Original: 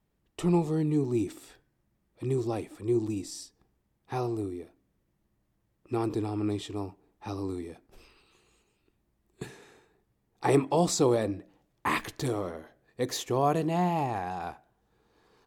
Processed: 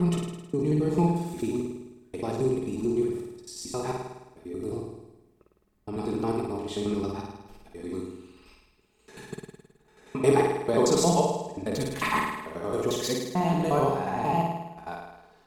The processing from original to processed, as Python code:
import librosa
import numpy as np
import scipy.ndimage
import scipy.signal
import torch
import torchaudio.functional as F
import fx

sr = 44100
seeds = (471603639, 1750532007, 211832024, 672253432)

y = fx.block_reorder(x, sr, ms=89.0, group=6)
y = y + 0.44 * np.pad(y, (int(4.7 * sr / 1000.0), 0))[:len(y)]
y = fx.room_flutter(y, sr, wall_m=9.1, rt60_s=1.0)